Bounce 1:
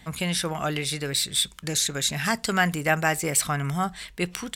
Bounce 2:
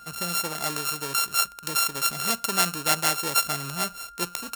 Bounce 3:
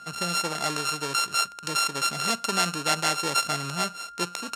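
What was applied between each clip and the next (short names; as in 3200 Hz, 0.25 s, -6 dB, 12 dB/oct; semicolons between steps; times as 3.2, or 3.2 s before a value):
sample sorter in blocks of 32 samples; tone controls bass -8 dB, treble +8 dB; whine 1400 Hz -42 dBFS; gain -2.5 dB
BPF 110–7600 Hz; in parallel at +1 dB: limiter -14.5 dBFS, peak gain reduction 9 dB; on the sum: gain -4 dB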